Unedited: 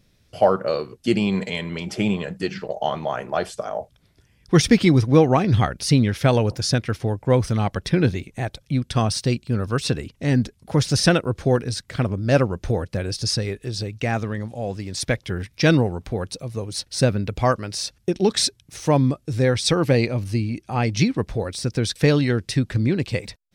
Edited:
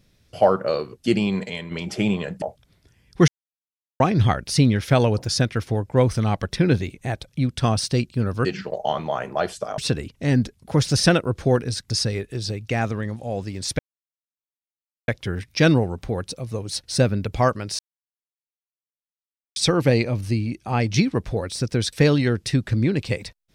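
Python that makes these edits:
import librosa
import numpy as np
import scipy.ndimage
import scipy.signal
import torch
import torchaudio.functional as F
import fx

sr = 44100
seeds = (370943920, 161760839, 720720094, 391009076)

y = fx.edit(x, sr, fx.fade_out_to(start_s=1.13, length_s=0.58, floor_db=-6.0),
    fx.move(start_s=2.42, length_s=1.33, to_s=9.78),
    fx.silence(start_s=4.61, length_s=0.72),
    fx.cut(start_s=11.9, length_s=1.32),
    fx.insert_silence(at_s=15.11, length_s=1.29),
    fx.silence(start_s=17.82, length_s=1.77), tone=tone)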